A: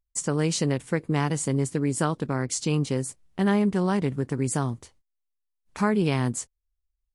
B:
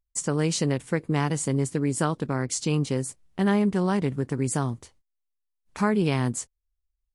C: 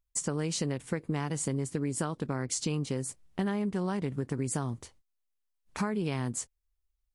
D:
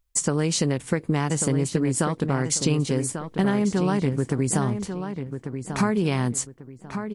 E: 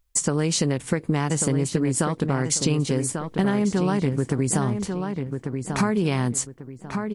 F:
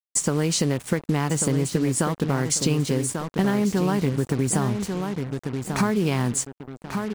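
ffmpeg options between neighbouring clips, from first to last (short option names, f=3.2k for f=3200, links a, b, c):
-af anull
-af "acompressor=threshold=-28dB:ratio=6"
-filter_complex "[0:a]asplit=2[a][b];[b]adelay=1143,lowpass=f=3k:p=1,volume=-8dB,asplit=2[c][d];[d]adelay=1143,lowpass=f=3k:p=1,volume=0.3,asplit=2[e][f];[f]adelay=1143,lowpass=f=3k:p=1,volume=0.3,asplit=2[g][h];[h]adelay=1143,lowpass=f=3k:p=1,volume=0.3[i];[a][c][e][g][i]amix=inputs=5:normalize=0,volume=8.5dB"
-af "acompressor=threshold=-27dB:ratio=1.5,volume=3.5dB"
-af "acrusher=bits=5:mix=0:aa=0.5"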